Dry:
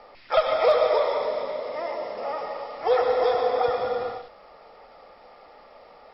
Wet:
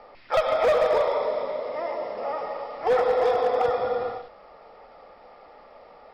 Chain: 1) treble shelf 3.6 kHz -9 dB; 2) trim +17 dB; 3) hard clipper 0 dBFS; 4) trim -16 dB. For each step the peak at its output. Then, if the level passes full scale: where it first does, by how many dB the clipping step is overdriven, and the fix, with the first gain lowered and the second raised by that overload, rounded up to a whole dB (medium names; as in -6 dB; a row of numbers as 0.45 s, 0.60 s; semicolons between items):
-11.0 dBFS, +6.0 dBFS, 0.0 dBFS, -16.0 dBFS; step 2, 6.0 dB; step 2 +11 dB, step 4 -10 dB